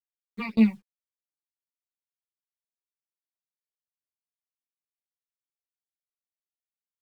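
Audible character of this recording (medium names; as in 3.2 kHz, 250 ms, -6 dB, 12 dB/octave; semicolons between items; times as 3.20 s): phasing stages 8, 3.9 Hz, lowest notch 420–1800 Hz; a quantiser's noise floor 10-bit, dither none; tremolo saw down 3.5 Hz, depth 100%; a shimmering, thickened sound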